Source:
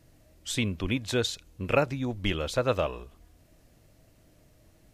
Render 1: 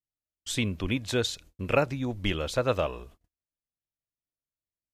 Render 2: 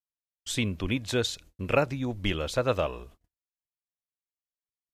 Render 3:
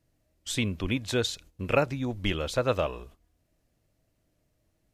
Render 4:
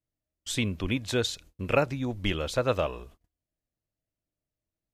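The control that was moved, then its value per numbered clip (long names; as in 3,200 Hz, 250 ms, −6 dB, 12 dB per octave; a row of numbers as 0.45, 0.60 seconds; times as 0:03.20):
noise gate, range: −44, −59, −13, −31 decibels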